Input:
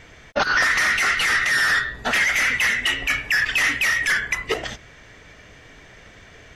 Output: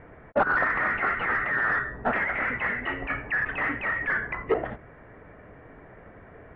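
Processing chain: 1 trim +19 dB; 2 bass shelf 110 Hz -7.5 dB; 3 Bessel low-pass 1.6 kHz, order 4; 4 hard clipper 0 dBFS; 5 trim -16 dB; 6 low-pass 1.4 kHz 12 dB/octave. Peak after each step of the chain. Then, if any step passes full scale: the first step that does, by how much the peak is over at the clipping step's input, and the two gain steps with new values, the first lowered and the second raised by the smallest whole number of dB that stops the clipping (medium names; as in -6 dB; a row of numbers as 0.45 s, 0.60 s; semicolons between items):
+9.0 dBFS, +9.0 dBFS, +6.5 dBFS, 0.0 dBFS, -16.0 dBFS, -15.5 dBFS; step 1, 6.5 dB; step 1 +12 dB, step 5 -9 dB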